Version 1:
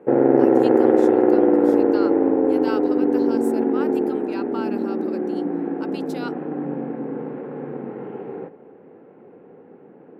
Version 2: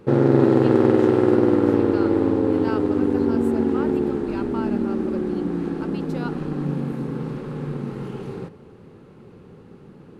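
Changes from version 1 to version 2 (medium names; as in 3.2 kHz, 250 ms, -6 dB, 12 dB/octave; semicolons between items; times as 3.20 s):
speech: add tilt EQ -2.5 dB/octave; background: remove cabinet simulation 280–2100 Hz, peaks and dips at 280 Hz +5 dB, 490 Hz +5 dB, 720 Hz +8 dB, 1.2 kHz -7 dB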